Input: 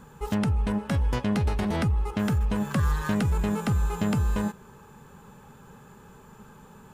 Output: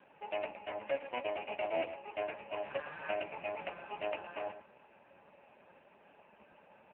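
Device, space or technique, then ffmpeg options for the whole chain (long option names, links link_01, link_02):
telephone: -filter_complex "[0:a]asplit=3[link_01][link_02][link_03];[link_01]afade=type=out:start_time=0.64:duration=0.02[link_04];[link_02]bandreject=frequency=660:width=12,afade=type=in:start_time=0.64:duration=0.02,afade=type=out:start_time=1.24:duration=0.02[link_05];[link_03]afade=type=in:start_time=1.24:duration=0.02[link_06];[link_04][link_05][link_06]amix=inputs=3:normalize=0,afftfilt=real='re*lt(hypot(re,im),0.251)':imag='im*lt(hypot(re,im),0.251)':win_size=1024:overlap=0.75,highpass=360,lowpass=3100,superequalizer=7b=0.562:8b=3.16:10b=0.355:12b=3.16:13b=0.631,aecho=1:1:113:0.251,volume=-4.5dB" -ar 8000 -c:a libopencore_amrnb -b:a 5150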